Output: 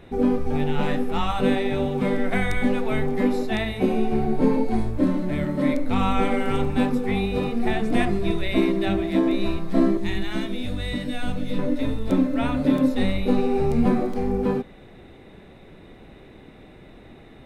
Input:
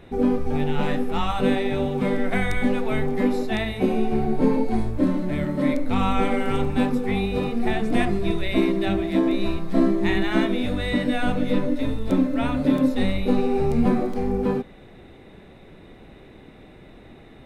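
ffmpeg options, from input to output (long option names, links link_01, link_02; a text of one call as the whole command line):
ffmpeg -i in.wav -filter_complex "[0:a]asettb=1/sr,asplit=3[link_01][link_02][link_03];[link_01]atrim=end=9.974[link_04];[link_02]atrim=start=9.97:end=11.59,asetpts=PTS-STARTPTS,afade=type=in:duration=0.004:curve=qsin,afade=type=out:start_time=1.616:duration=0.004:curve=qsin,acrossover=split=170|3000[link_05][link_06][link_07];[link_06]acompressor=threshold=-45dB:ratio=1.5[link_08];[link_05][link_08][link_07]amix=inputs=3:normalize=0[link_09];[link_03]atrim=start=11.586[link_10];[link_04][link_09]acrossfade=duration=0.004:curve1=hsin:curve2=qsin[link_11];[link_11][link_10]acrossfade=duration=0.004:curve1=qsin:curve2=hsin" out.wav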